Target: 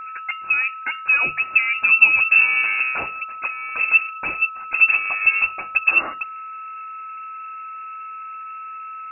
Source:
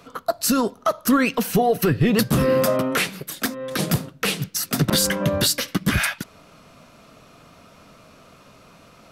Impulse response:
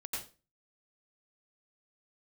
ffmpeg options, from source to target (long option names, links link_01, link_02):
-filter_complex "[0:a]equalizer=frequency=120:width=0.87:gain=13,acrossover=split=120|510|2100[link_01][link_02][link_03][link_04];[link_03]aeval=exprs='clip(val(0),-1,0.0299)':channel_layout=same[link_05];[link_01][link_02][link_05][link_04]amix=inputs=4:normalize=0,lowpass=frequency=2400:width_type=q:width=0.5098,lowpass=frequency=2400:width_type=q:width=0.6013,lowpass=frequency=2400:width_type=q:width=0.9,lowpass=frequency=2400:width_type=q:width=2.563,afreqshift=-2800,aeval=exprs='val(0)+0.0447*sin(2*PI*1300*n/s)':channel_layout=same,bandreject=frequency=50:width_type=h:width=6,bandreject=frequency=100:width_type=h:width=6,bandreject=frequency=150:width_type=h:width=6,bandreject=frequency=200:width_type=h:width=6,volume=-4dB"